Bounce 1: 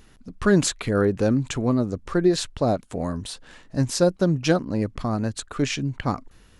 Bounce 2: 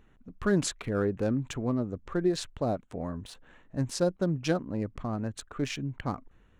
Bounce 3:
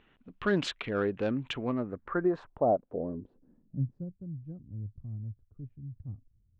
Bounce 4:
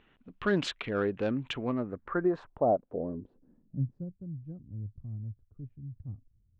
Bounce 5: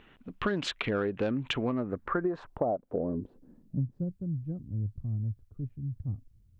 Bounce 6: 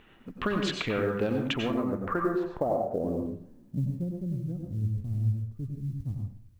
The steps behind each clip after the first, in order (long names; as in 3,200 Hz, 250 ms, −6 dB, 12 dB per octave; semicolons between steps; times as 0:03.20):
adaptive Wiener filter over 9 samples; level −7.5 dB
low-shelf EQ 140 Hz −11 dB; low-pass filter sweep 3,100 Hz → 100 Hz, 0:01.56–0:04.19
no processing that can be heard
downward compressor 10 to 1, threshold −33 dBFS, peak gain reduction 12 dB; level +7 dB
log-companded quantiser 8 bits; dense smooth reverb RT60 0.53 s, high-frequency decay 0.6×, pre-delay 80 ms, DRR 2 dB